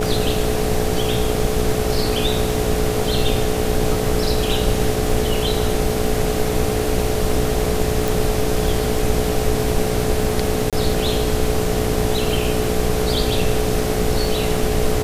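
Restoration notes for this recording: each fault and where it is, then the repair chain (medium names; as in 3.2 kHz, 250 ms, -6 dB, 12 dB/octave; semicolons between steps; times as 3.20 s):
buzz 60 Hz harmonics 13 -24 dBFS
crackle 22 per s -26 dBFS
whine 430 Hz -23 dBFS
8.08 s: pop
10.70–10.73 s: dropout 27 ms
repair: de-click; de-hum 60 Hz, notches 13; band-stop 430 Hz, Q 30; interpolate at 10.70 s, 27 ms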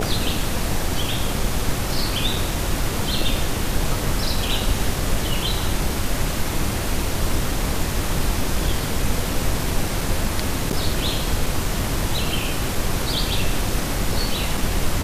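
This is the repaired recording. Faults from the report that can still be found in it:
nothing left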